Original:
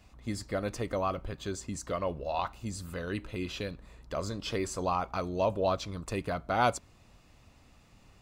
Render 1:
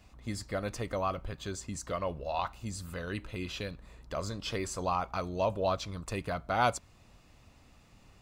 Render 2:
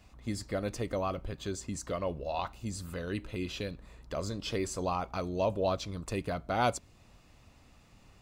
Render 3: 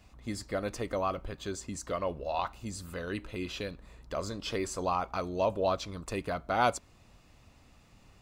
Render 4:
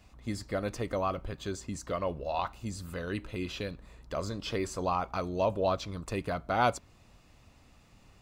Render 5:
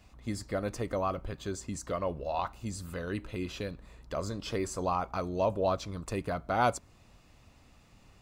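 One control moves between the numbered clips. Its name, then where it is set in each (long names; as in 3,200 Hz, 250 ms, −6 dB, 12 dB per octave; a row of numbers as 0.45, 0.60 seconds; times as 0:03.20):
dynamic equaliser, frequency: 330, 1,200, 120, 8,600, 3,200 Hertz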